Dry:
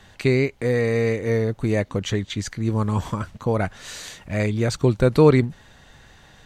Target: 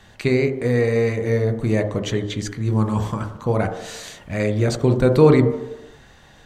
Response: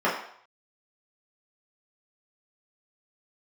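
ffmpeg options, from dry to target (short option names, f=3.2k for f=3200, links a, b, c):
-filter_complex "[0:a]asplit=2[a][b];[1:a]atrim=start_sample=2205,asetrate=26460,aresample=44100,adelay=17[c];[b][c]afir=irnorm=-1:irlink=0,volume=-24dB[d];[a][d]amix=inputs=2:normalize=0"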